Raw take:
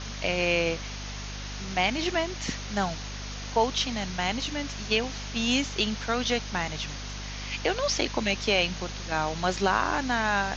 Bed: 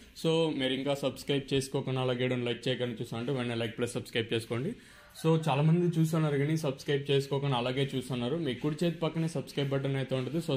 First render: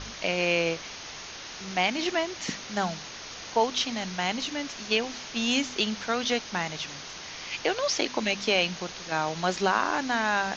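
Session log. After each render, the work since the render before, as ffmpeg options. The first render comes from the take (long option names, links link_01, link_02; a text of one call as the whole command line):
ffmpeg -i in.wav -af "bandreject=frequency=50:width_type=h:width=4,bandreject=frequency=100:width_type=h:width=4,bandreject=frequency=150:width_type=h:width=4,bandreject=frequency=200:width_type=h:width=4,bandreject=frequency=250:width_type=h:width=4" out.wav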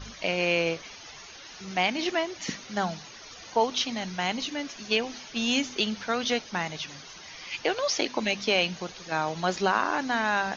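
ffmpeg -i in.wav -af "afftdn=noise_reduction=11:noise_floor=-41" out.wav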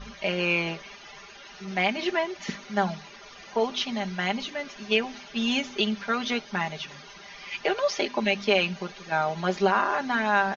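ffmpeg -i in.wav -af "bass=frequency=250:gain=-2,treble=frequency=4000:gain=-10,aecho=1:1:5:0.78" out.wav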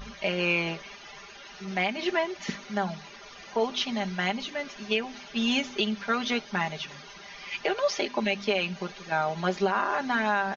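ffmpeg -i in.wav -af "acompressor=mode=upward:threshold=-46dB:ratio=2.5,alimiter=limit=-14.5dB:level=0:latency=1:release=265" out.wav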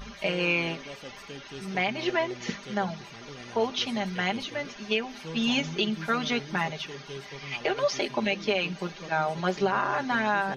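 ffmpeg -i in.wav -i bed.wav -filter_complex "[1:a]volume=-13dB[link_01];[0:a][link_01]amix=inputs=2:normalize=0" out.wav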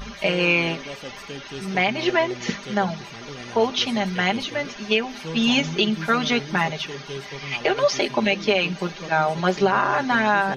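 ffmpeg -i in.wav -af "volume=6.5dB" out.wav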